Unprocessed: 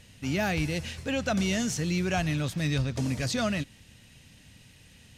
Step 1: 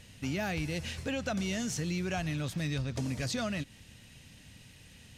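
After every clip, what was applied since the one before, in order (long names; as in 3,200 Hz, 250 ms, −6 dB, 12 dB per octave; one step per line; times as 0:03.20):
downward compressor 3 to 1, threshold −32 dBFS, peak gain reduction 7 dB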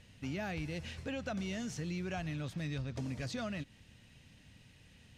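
high-shelf EQ 6,200 Hz −10.5 dB
level −5 dB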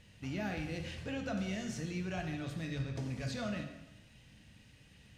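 dense smooth reverb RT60 1 s, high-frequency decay 0.8×, DRR 2.5 dB
level −1.5 dB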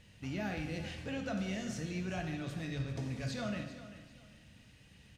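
repeating echo 393 ms, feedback 29%, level −14 dB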